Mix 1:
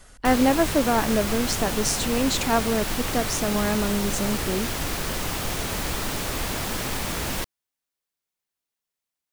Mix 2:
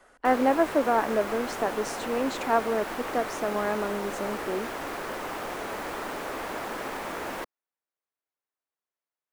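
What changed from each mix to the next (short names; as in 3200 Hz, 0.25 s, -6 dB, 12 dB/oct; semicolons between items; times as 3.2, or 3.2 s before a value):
master: add three-band isolator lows -21 dB, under 280 Hz, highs -15 dB, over 2000 Hz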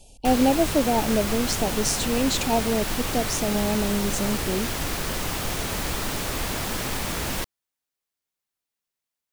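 speech: add brick-wall FIR band-stop 940–2300 Hz; master: remove three-band isolator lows -21 dB, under 280 Hz, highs -15 dB, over 2000 Hz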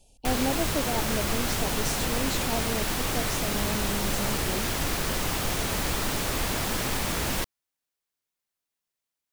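speech -9.0 dB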